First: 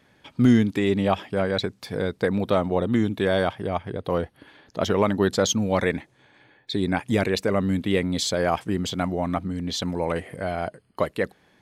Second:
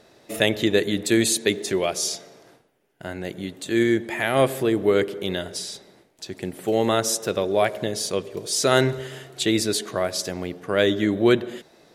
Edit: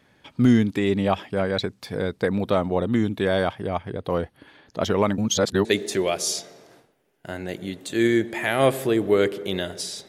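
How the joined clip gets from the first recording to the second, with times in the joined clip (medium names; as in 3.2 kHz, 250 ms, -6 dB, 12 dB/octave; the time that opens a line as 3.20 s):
first
5.18–5.65 s: reverse
5.65 s: go over to second from 1.41 s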